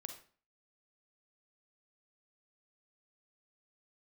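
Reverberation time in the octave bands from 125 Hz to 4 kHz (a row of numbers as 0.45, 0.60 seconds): 0.50, 0.50, 0.45, 0.40, 0.40, 0.35 seconds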